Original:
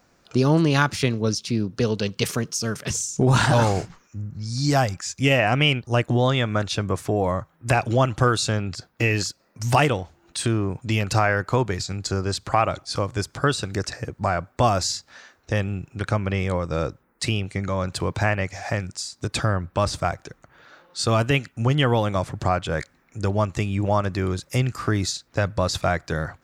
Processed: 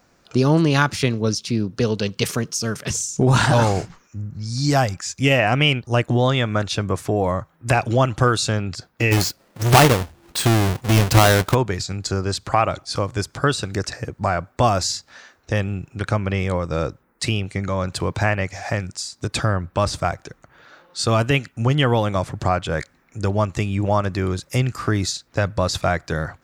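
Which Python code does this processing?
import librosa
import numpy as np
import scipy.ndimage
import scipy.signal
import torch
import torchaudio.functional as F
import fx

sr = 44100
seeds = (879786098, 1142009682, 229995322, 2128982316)

y = fx.halfwave_hold(x, sr, at=(9.11, 11.53), fade=0.02)
y = y * librosa.db_to_amplitude(2.0)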